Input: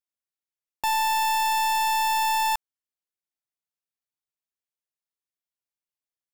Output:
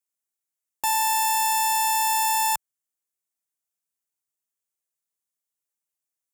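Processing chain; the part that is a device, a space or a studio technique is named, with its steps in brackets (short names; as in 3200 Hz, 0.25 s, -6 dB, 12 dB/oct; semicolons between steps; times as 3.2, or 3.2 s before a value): budget condenser microphone (HPF 67 Hz 6 dB/oct; resonant high shelf 5700 Hz +7 dB, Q 1.5)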